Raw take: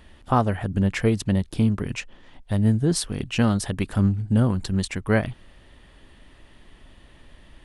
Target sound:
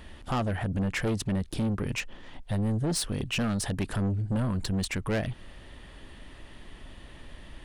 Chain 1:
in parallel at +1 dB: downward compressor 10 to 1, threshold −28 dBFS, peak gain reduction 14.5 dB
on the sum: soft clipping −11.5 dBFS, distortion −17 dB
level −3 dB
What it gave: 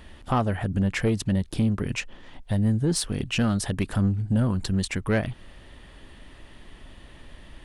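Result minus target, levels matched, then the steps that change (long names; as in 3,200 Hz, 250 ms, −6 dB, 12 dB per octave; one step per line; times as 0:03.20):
soft clipping: distortion −9 dB
change: soft clipping −21 dBFS, distortion −7 dB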